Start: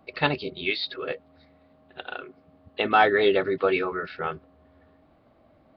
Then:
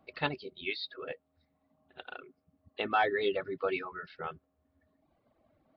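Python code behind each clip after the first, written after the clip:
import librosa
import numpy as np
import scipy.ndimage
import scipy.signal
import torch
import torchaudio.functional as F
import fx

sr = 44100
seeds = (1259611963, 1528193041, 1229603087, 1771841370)

y = fx.dereverb_blind(x, sr, rt60_s=1.2)
y = y * librosa.db_to_amplitude(-8.5)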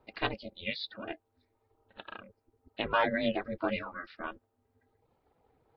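y = x * np.sin(2.0 * np.pi * 170.0 * np.arange(len(x)) / sr)
y = y * librosa.db_to_amplitude(3.0)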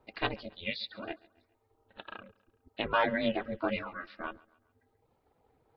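y = fx.echo_feedback(x, sr, ms=138, feedback_pct=44, wet_db=-23.5)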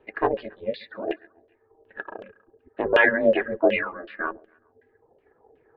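y = fx.filter_lfo_lowpass(x, sr, shape='saw_down', hz=2.7, low_hz=540.0, high_hz=3100.0, q=4.1)
y = fx.small_body(y, sr, hz=(400.0, 1700.0), ring_ms=20, db=14)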